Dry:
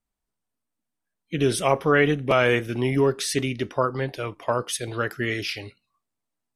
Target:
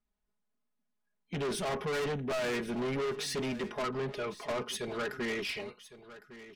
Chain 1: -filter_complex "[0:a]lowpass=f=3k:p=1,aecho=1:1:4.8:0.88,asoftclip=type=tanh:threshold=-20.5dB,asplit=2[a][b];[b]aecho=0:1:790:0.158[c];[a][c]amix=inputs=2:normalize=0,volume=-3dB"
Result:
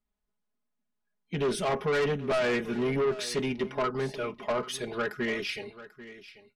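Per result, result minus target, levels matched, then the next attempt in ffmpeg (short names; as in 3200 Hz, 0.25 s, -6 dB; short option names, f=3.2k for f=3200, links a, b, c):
echo 0.318 s early; soft clip: distortion -4 dB
-filter_complex "[0:a]lowpass=f=3k:p=1,aecho=1:1:4.8:0.88,asoftclip=type=tanh:threshold=-20.5dB,asplit=2[a][b];[b]aecho=0:1:1108:0.158[c];[a][c]amix=inputs=2:normalize=0,volume=-3dB"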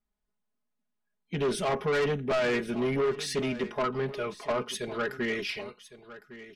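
soft clip: distortion -4 dB
-filter_complex "[0:a]lowpass=f=3k:p=1,aecho=1:1:4.8:0.88,asoftclip=type=tanh:threshold=-28dB,asplit=2[a][b];[b]aecho=0:1:1108:0.158[c];[a][c]amix=inputs=2:normalize=0,volume=-3dB"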